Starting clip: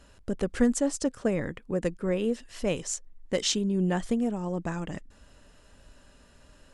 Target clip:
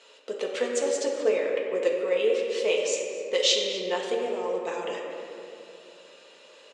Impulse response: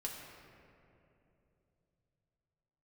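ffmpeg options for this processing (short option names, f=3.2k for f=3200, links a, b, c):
-filter_complex "[0:a]aemphasis=mode=production:type=50fm,asplit=2[a][b];[b]acompressor=threshold=-34dB:ratio=6,volume=-1.5dB[c];[a][c]amix=inputs=2:normalize=0,highpass=f=420:w=0.5412,highpass=f=420:w=1.3066,equalizer=f=470:t=q:w=4:g=7,equalizer=f=710:t=q:w=4:g=-5,equalizer=f=1.6k:t=q:w=4:g=-7,equalizer=f=2.4k:t=q:w=4:g=5,equalizer=f=3.5k:t=q:w=4:g=5,equalizer=f=5.3k:t=q:w=4:g=-6,lowpass=f=5.8k:w=0.5412,lowpass=f=5.8k:w=1.3066,asplit=2[d][e];[e]adelay=250.7,volume=-14dB,highshelf=f=4k:g=-5.64[f];[d][f]amix=inputs=2:normalize=0[g];[1:a]atrim=start_sample=2205,asetrate=43659,aresample=44100[h];[g][h]afir=irnorm=-1:irlink=0,volume=2.5dB"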